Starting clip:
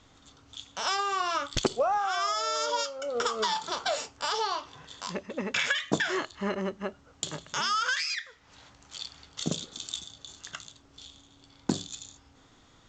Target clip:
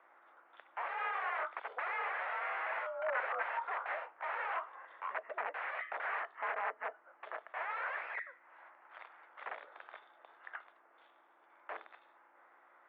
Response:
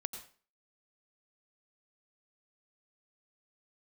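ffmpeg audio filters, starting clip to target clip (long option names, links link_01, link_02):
-af "aeval=exprs='val(0)+0.00398*(sin(2*PI*60*n/s)+sin(2*PI*2*60*n/s)/2+sin(2*PI*3*60*n/s)/3+sin(2*PI*4*60*n/s)/4+sin(2*PI*5*60*n/s)/5)':channel_layout=same,aeval=exprs='(mod(23.7*val(0)+1,2)-1)/23.7':channel_layout=same,highpass=frequency=550:width_type=q:width=0.5412,highpass=frequency=550:width_type=q:width=1.307,lowpass=frequency=2000:width_type=q:width=0.5176,lowpass=frequency=2000:width_type=q:width=0.7071,lowpass=frequency=2000:width_type=q:width=1.932,afreqshift=51,volume=1dB"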